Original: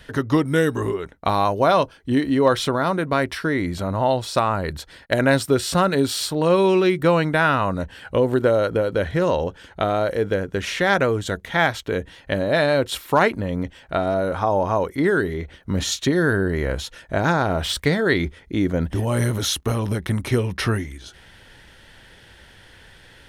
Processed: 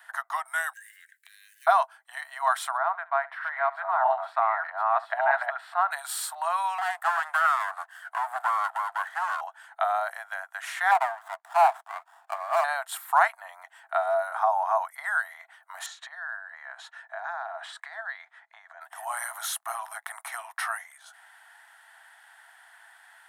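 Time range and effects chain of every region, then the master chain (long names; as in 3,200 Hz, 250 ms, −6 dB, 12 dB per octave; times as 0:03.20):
0:00.73–0:01.67: mu-law and A-law mismatch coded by mu + Chebyshev high-pass filter 1,600 Hz, order 8 + downward compressor 10 to 1, threshold −40 dBFS
0:02.77–0:05.91: delay that plays each chunk backwards 635 ms, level 0 dB + high-frequency loss of the air 420 metres + flutter between parallel walls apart 11.9 metres, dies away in 0.21 s
0:06.78–0:09.41: lower of the sound and its delayed copy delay 0.61 ms + highs frequency-modulated by the lows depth 0.2 ms
0:10.91–0:12.64: band-pass filter 490–3,300 Hz + dynamic equaliser 910 Hz, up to +5 dB, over −30 dBFS, Q 1.1 + windowed peak hold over 17 samples
0:15.86–0:18.81: downward compressor 12 to 1, threshold −25 dBFS + high-frequency loss of the air 110 metres + hollow resonant body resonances 260/1,700/3,900 Hz, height 8 dB, ringing for 25 ms
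whole clip: Chebyshev high-pass filter 670 Hz, order 8; flat-topped bell 3,800 Hz −12.5 dB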